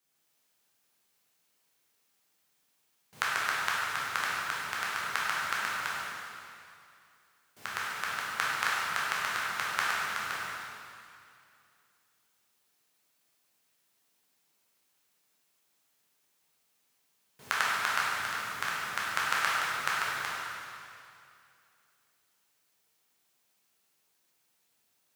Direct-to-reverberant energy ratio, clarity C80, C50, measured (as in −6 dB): −7.5 dB, −1.5 dB, −3.5 dB